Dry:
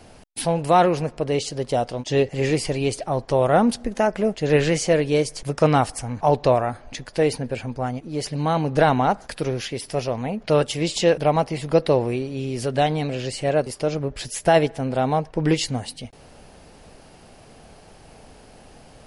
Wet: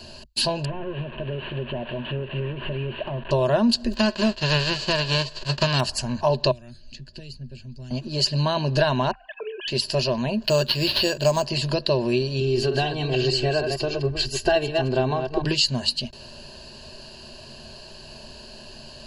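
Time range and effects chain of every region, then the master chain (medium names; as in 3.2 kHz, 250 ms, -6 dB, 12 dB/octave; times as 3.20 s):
0.65–3.31 s: one-bit delta coder 16 kbps, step -34 dBFS + compression 10:1, threshold -28 dBFS
3.93–5.79 s: formants flattened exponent 0.3 + tape spacing loss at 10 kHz 28 dB
6.51–7.91 s: amplifier tone stack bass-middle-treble 10-0-1 + band-stop 1.1 kHz, Q 17 + three bands compressed up and down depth 100%
9.11–9.68 s: formants replaced by sine waves + feedback comb 260 Hz, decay 1 s, mix 50%
10.43–11.46 s: careless resampling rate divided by 6×, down none, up hold + treble shelf 9.6 kHz -11 dB
12.40–15.45 s: chunks repeated in reverse 151 ms, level -6.5 dB + treble shelf 3.3 kHz -11 dB + comb 2.6 ms, depth 81%
whole clip: high-order bell 4.2 kHz +12 dB 1.2 oct; compression 3:1, threshold -21 dBFS; rippled EQ curve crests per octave 1.4, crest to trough 14 dB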